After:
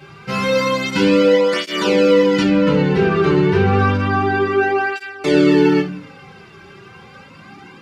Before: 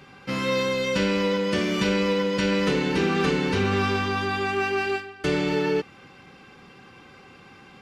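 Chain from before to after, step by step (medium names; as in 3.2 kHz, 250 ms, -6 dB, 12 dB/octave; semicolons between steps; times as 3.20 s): 2.43–4.96 s: low-pass 1.6 kHz 6 dB/octave; simulated room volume 51 m³, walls mixed, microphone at 0.64 m; cancelling through-zero flanger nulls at 0.3 Hz, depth 4.2 ms; trim +7 dB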